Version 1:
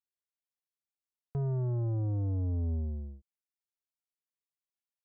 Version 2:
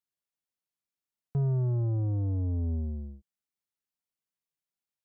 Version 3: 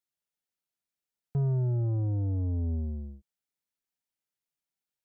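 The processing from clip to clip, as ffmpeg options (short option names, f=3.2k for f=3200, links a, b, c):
-af "equalizer=f=170:t=o:w=1.1:g=6.5"
-af "asuperstop=centerf=1100:order=8:qfactor=7.4"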